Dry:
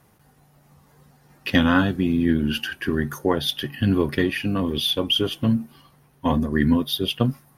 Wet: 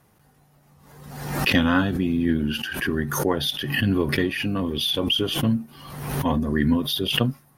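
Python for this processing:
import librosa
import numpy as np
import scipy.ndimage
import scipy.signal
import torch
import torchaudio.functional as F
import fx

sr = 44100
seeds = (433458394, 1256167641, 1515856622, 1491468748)

y = fx.pre_swell(x, sr, db_per_s=50.0)
y = y * 10.0 ** (-2.0 / 20.0)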